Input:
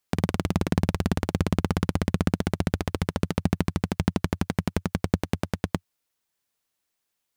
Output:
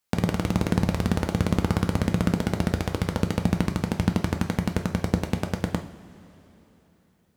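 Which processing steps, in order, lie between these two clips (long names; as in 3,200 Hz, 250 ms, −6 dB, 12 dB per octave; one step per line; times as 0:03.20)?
coupled-rooms reverb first 0.45 s, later 3.8 s, from −18 dB, DRR 4.5 dB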